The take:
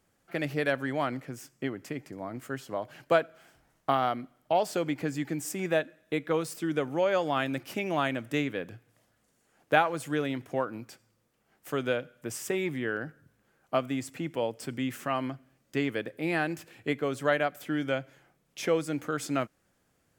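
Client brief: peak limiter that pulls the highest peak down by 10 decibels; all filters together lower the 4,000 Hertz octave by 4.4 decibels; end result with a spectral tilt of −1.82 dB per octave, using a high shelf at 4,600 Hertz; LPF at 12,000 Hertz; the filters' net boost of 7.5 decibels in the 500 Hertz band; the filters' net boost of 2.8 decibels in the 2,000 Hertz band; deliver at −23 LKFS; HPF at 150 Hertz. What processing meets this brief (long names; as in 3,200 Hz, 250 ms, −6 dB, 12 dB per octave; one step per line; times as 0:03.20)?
high-pass filter 150 Hz
low-pass filter 12,000 Hz
parametric band 500 Hz +9 dB
parametric band 2,000 Hz +5.5 dB
parametric band 4,000 Hz −5 dB
high-shelf EQ 4,600 Hz −8.5 dB
level +5.5 dB
brickwall limiter −10 dBFS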